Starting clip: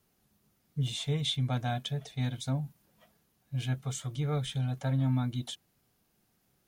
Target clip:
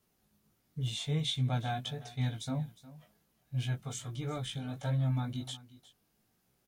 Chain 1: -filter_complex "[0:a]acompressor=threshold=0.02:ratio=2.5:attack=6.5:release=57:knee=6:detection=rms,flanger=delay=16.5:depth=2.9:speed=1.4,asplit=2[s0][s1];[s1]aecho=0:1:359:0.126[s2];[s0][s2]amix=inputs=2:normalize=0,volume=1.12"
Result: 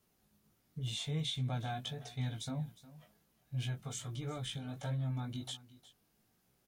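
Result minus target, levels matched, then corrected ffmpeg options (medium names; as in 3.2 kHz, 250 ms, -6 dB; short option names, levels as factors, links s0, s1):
compression: peak gain reduction +6.5 dB
-filter_complex "[0:a]flanger=delay=16.5:depth=2.9:speed=1.4,asplit=2[s0][s1];[s1]aecho=0:1:359:0.126[s2];[s0][s2]amix=inputs=2:normalize=0,volume=1.12"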